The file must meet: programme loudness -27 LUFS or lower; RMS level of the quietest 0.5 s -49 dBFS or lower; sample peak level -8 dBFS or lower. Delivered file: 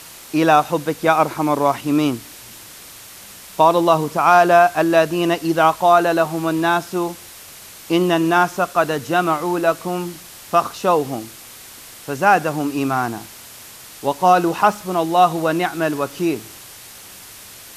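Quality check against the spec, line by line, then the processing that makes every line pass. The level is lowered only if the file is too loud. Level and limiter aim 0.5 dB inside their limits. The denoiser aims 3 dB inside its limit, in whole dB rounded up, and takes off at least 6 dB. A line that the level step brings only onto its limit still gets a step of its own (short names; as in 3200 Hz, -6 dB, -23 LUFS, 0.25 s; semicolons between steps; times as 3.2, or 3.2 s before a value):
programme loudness -17.5 LUFS: fail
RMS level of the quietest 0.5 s -40 dBFS: fail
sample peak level -2.0 dBFS: fail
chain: gain -10 dB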